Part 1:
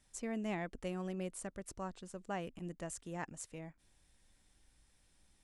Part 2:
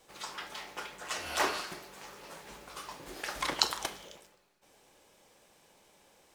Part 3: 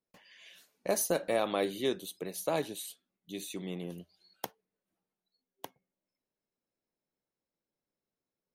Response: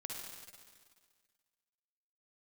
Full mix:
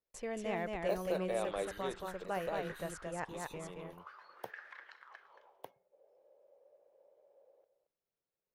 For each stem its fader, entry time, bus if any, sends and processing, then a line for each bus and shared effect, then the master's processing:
+1.5 dB, 0.00 s, no send, echo send -3 dB, gate -59 dBFS, range -34 dB
-1.0 dB, 1.30 s, no send, echo send -12 dB, peaking EQ 400 Hz +7 dB 1.2 oct; compression 10:1, threshold -36 dBFS, peak gain reduction 17 dB; auto-wah 490–1700 Hz, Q 6, up, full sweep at -38.5 dBFS
-4.0 dB, 0.00 s, no send, no echo send, de-esser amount 80%; auto duck -6 dB, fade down 1.80 s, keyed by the first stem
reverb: none
echo: delay 225 ms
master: graphic EQ 250/500/8000 Hz -9/+5/-8 dB

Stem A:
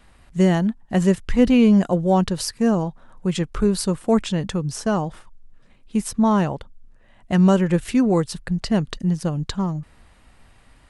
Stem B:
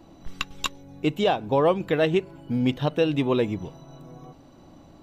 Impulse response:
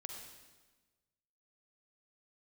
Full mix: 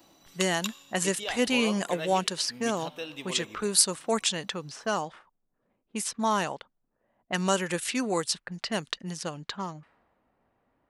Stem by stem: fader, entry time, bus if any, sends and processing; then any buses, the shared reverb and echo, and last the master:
-3.0 dB, 0.00 s, no send, level-controlled noise filter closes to 490 Hz, open at -16 dBFS; bass shelf 120 Hz -10.5 dB
-4.5 dB, 0.00 s, send -15 dB, auto duck -11 dB, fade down 0.60 s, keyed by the first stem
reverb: on, RT60 1.3 s, pre-delay 40 ms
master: tilt EQ +4 dB/octave

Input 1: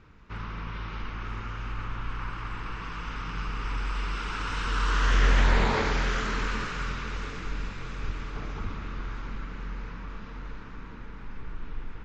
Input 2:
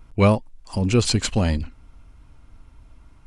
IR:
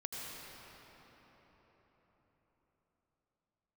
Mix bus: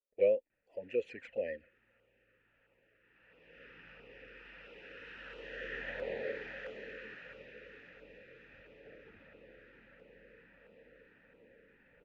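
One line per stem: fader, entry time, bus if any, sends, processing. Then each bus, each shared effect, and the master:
+1.0 dB, 0.50 s, no send, auto duck -15 dB, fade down 1.05 s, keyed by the second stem
-6.5 dB, 0.00 s, no send, gate with hold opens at -37 dBFS; ten-band graphic EQ 125 Hz -8 dB, 500 Hz +8 dB, 2 kHz +12 dB, 4 kHz -6 dB; touch-sensitive flanger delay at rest 5.1 ms, full sweep at -13.5 dBFS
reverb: none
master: vowel filter e; treble shelf 3.8 kHz -12 dB; LFO notch saw down 1.5 Hz 320–1900 Hz

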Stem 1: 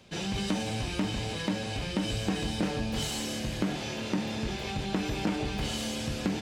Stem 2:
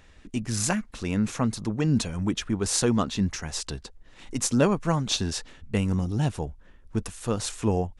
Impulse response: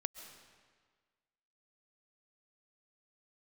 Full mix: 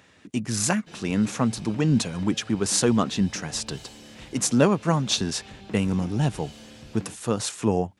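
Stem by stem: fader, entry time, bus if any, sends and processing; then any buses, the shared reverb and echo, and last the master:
-12.0 dB, 0.75 s, no send, echo send -19.5 dB, treble shelf 11 kHz -6 dB
+2.5 dB, 0.00 s, no send, no echo send, high-pass 110 Hz 24 dB/octave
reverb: none
echo: feedback delay 302 ms, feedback 48%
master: none

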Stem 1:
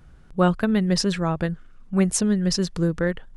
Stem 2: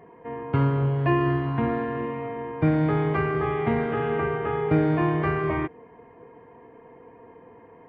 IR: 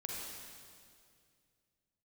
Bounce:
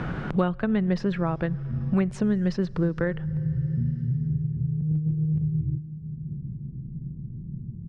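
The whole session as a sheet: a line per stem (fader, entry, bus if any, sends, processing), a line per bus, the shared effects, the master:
-2.5 dB, 0.00 s, send -23.5 dB, none
0.0 dB, 0.10 s, send -19.5 dB, inverse Chebyshev low-pass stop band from 550 Hz, stop band 70 dB; comb 5.6 ms, depth 73%; compressor with a negative ratio -34 dBFS, ratio -0.5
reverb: on, RT60 2.2 s, pre-delay 38 ms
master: low-pass 2.4 kHz 12 dB/octave; three bands compressed up and down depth 100%

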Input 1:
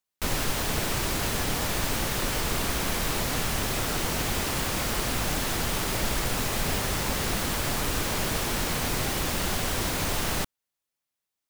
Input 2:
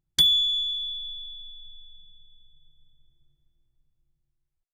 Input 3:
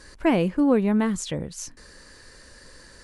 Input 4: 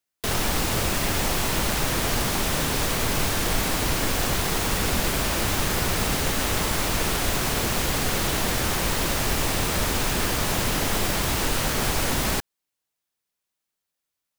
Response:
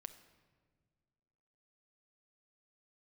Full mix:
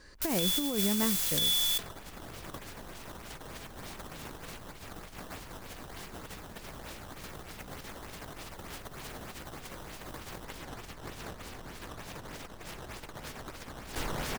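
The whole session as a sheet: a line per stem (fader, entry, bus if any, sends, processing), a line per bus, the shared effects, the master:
-9.5 dB, 0.00 s, no send, no echo send, pre-emphasis filter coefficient 0.9
-15.5 dB, 0.20 s, no send, echo send -8 dB, waveshaping leveller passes 2; auto duck -12 dB, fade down 0.30 s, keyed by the third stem
-16.5 dB, 0.00 s, no send, no echo send, low-pass 6.5 kHz
-4.5 dB, 1.55 s, send -10.5 dB, echo send -16 dB, decimation with a swept rate 11×, swing 160% 3.3 Hz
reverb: on, RT60 1.8 s, pre-delay 6 ms
echo: delay 990 ms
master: compressor with a negative ratio -36 dBFS, ratio -0.5

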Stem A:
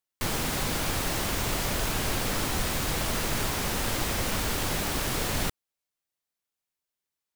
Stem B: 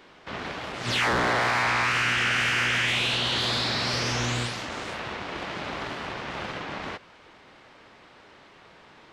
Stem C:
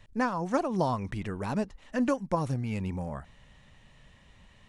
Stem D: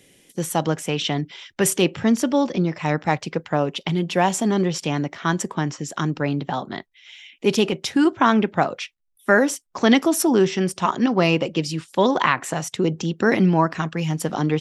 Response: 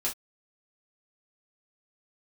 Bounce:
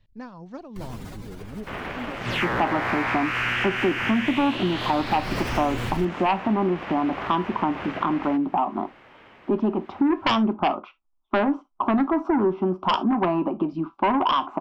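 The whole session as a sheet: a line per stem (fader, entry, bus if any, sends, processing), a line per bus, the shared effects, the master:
+0.5 dB, 0.55 s, no send, spectral contrast enhancement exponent 1.8; auto duck -17 dB, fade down 1.95 s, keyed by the third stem
+1.5 dB, 1.40 s, no send, high-order bell 6 kHz -10.5 dB
-16.5 dB, 0.00 s, no send, bass shelf 440 Hz +10.5 dB; LFO low-pass square 0.52 Hz 420–4300 Hz
+0.5 dB, 2.05 s, send -13.5 dB, four-pole ladder low-pass 1.4 kHz, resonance 45%; static phaser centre 490 Hz, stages 6; sine folder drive 10 dB, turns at -11 dBFS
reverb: on, pre-delay 3 ms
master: compression 2.5:1, threshold -22 dBFS, peak gain reduction 8.5 dB

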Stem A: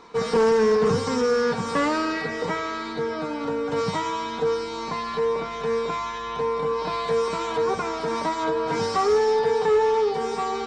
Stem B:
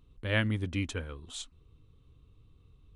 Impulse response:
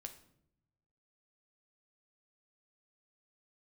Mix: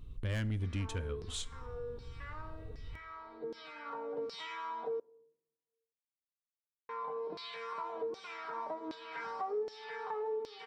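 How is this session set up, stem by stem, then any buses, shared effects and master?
-6.0 dB, 0.45 s, muted 5.00–6.89 s, send -11 dB, band-stop 6.6 kHz, Q 6.5; LFO band-pass saw down 1.3 Hz 310–4800 Hz; auto duck -18 dB, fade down 1.70 s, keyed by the second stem
+2.0 dB, 0.00 s, send -3.5 dB, saturation -26.5 dBFS, distortion -13 dB; bass shelf 98 Hz +11 dB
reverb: on, RT60 0.75 s, pre-delay 8 ms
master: compression 2.5:1, threshold -38 dBFS, peak gain reduction 12 dB

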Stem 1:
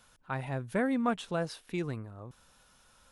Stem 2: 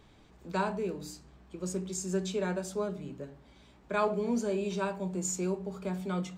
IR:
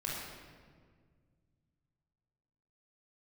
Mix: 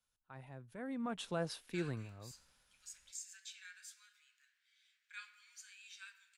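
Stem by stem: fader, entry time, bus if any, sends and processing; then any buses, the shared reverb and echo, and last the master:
0.71 s -15.5 dB -> 1.23 s -4 dB, 0.00 s, no send, peak limiter -25 dBFS, peak gain reduction 7.5 dB; three bands expanded up and down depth 40%
-10.0 dB, 1.20 s, send -13 dB, steep high-pass 1.6 kHz 48 dB/octave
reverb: on, RT60 1.8 s, pre-delay 20 ms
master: none

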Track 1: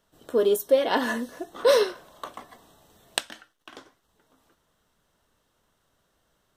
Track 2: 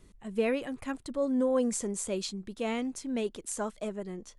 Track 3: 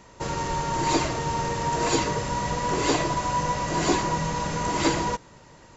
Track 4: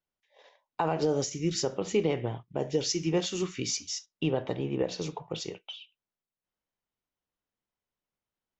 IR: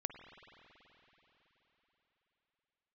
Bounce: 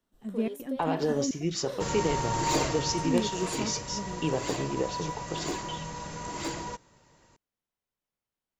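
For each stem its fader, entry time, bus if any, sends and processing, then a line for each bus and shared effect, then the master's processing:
-14.0 dB, 0.00 s, no send, compression, threshold -22 dBFS, peak gain reduction 8.5 dB
-8.5 dB, 0.00 s, muted 1.31–2.88 s, no send, peaking EQ 240 Hz +14 dB 0.99 oct; trance gate ".xxx.xxx" 126 bpm -24 dB
2.67 s -3.5 dB -> 3.35 s -11 dB, 1.60 s, no send, overload inside the chain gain 16.5 dB; treble shelf 6.1 kHz +6 dB
-1.0 dB, 0.00 s, no send, none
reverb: none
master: none

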